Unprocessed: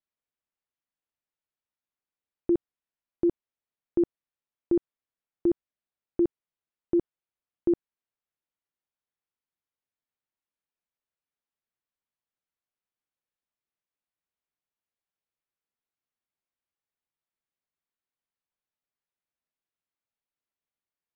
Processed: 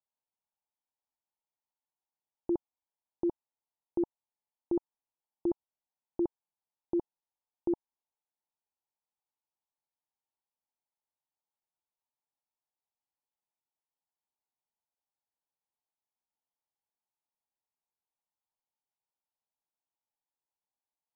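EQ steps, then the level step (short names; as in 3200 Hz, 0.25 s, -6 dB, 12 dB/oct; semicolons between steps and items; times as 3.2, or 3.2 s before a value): synth low-pass 880 Hz, resonance Q 4.9; -8.0 dB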